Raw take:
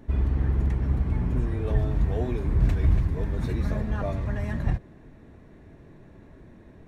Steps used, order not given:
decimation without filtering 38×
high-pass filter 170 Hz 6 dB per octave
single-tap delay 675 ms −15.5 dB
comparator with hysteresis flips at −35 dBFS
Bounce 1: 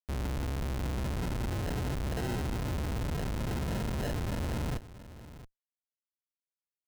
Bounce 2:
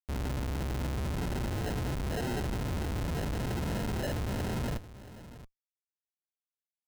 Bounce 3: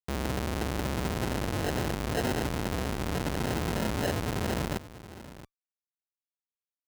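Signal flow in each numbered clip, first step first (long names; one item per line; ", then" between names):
high-pass filter, then decimation without filtering, then comparator with hysteresis, then single-tap delay
high-pass filter, then comparator with hysteresis, then single-tap delay, then decimation without filtering
comparator with hysteresis, then single-tap delay, then decimation without filtering, then high-pass filter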